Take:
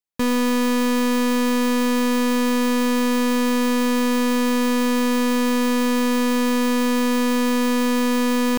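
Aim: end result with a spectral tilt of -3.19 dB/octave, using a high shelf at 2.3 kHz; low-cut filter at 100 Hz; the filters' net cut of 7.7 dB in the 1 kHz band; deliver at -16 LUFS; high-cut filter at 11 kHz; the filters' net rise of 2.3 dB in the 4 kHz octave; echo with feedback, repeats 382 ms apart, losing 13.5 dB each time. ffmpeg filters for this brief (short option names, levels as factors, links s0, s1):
-af "highpass=100,lowpass=11000,equalizer=f=1000:t=o:g=-8,highshelf=f=2300:g=-4.5,equalizer=f=4000:t=o:g=7.5,aecho=1:1:382|764:0.211|0.0444,volume=1.5"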